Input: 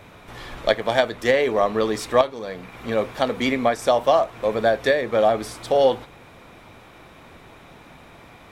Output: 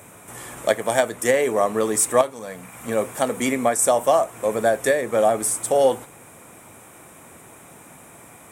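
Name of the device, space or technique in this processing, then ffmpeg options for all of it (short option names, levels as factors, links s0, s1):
budget condenser microphone: -filter_complex "[0:a]asettb=1/sr,asplit=3[s0][s1][s2];[s0]atrim=end=2.324[s3];[s1]atrim=start=2.32:end=2.88,asetpts=PTS-STARTPTS,afade=t=in:d=0.004:c=qsin,afade=t=out:st=0.556:d=0.004:c=qsin,equalizer=f=380:w=2.3:g=-8[s4];[s2]atrim=start=2.876[s5];[s3][s4]acrossfade=d=0.004:c1=hsin:c2=qsin[s6];[s6][s5]acrossfade=d=0.004:c1=qsin:c2=hsin,highpass=100,highshelf=f=6100:t=q:w=3:g=13"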